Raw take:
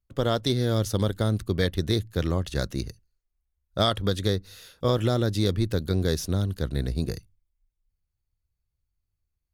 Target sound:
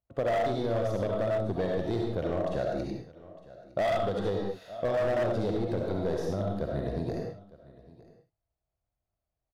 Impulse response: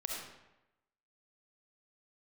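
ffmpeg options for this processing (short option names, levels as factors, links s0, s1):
-filter_complex "[0:a]highpass=f=130:p=1,asoftclip=type=tanh:threshold=0.119,lowpass=f=1300:p=1,equalizer=f=680:t=o:w=0.68:g=14.5,aecho=1:1:908:0.075[s0];[1:a]atrim=start_sample=2205,afade=t=out:st=0.26:d=0.01,atrim=end_sample=11907[s1];[s0][s1]afir=irnorm=-1:irlink=0,asoftclip=type=hard:threshold=0.112,acompressor=threshold=0.0447:ratio=3"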